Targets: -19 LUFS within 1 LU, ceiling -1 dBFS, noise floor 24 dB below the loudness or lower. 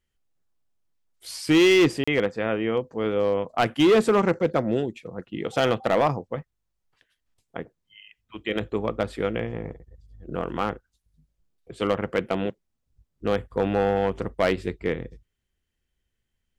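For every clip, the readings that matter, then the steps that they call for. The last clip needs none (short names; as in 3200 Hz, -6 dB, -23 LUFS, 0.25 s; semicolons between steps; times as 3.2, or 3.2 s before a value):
clipped 0.8%; flat tops at -13.5 dBFS; dropouts 1; longest dropout 35 ms; loudness -24.5 LUFS; peak -13.5 dBFS; loudness target -19.0 LUFS
-> clip repair -13.5 dBFS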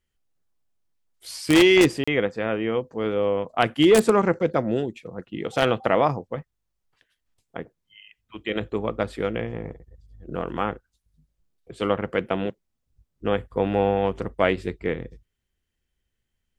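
clipped 0.0%; dropouts 1; longest dropout 35 ms
-> interpolate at 2.04, 35 ms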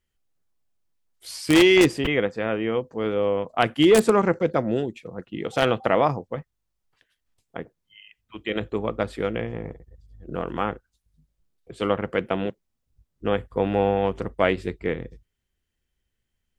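dropouts 0; loudness -23.5 LUFS; peak -4.5 dBFS; loudness target -19.0 LUFS
-> gain +4.5 dB; limiter -1 dBFS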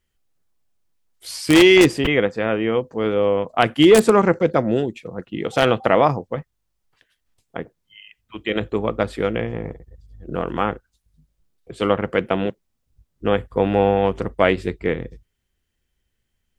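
loudness -19.0 LUFS; peak -1.0 dBFS; noise floor -74 dBFS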